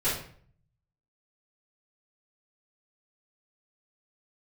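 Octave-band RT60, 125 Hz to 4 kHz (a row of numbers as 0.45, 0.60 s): 1.1, 0.70, 0.55, 0.50, 0.50, 0.40 s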